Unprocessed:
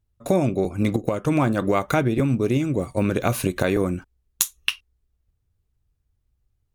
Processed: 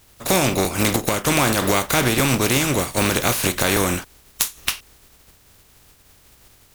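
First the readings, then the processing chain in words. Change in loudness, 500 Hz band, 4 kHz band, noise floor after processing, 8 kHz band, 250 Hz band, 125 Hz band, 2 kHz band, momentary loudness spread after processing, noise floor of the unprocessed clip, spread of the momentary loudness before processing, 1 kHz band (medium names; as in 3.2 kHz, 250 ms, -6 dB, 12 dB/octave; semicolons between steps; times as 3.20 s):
+3.5 dB, +0.5 dB, +9.5 dB, -54 dBFS, +9.5 dB, 0.0 dB, 0.0 dB, +8.5 dB, 6 LU, -73 dBFS, 5 LU, +5.5 dB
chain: spectral contrast reduction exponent 0.43; power-law waveshaper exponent 0.7; trim -2.5 dB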